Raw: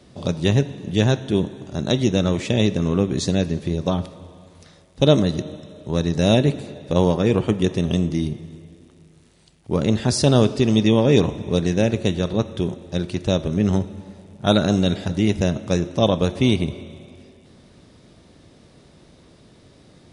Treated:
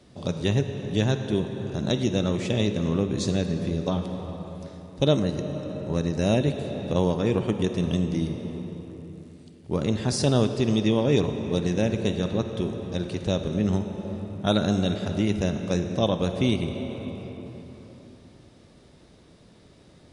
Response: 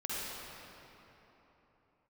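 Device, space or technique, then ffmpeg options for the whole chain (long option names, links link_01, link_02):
ducked reverb: -filter_complex "[0:a]asplit=3[link_01][link_02][link_03];[1:a]atrim=start_sample=2205[link_04];[link_02][link_04]afir=irnorm=-1:irlink=0[link_05];[link_03]apad=whole_len=887474[link_06];[link_05][link_06]sidechaincompress=threshold=-19dB:ratio=8:attack=45:release=741,volume=-6dB[link_07];[link_01][link_07]amix=inputs=2:normalize=0,asettb=1/sr,asplit=3[link_08][link_09][link_10];[link_08]atrim=end=5.174[link_11];[link_09]atrim=start=5.17:end=6.41,asetpts=PTS-STARTPTS,afade=type=in:duration=0.004:curve=qsin,afade=type=out:start_time=1.236:duration=0.004:curve=qsin,bandreject=frequency=3500:width=5.4[link_12];[link_10]atrim=start=6.406[link_13];[link_11][link_12]acrossfade=duration=0.004:curve1=hsin:curve2=qsin[link_14];[link_14][link_13]acrossfade=duration=0.004:curve1=qsin:curve2=hsin,volume=-7dB"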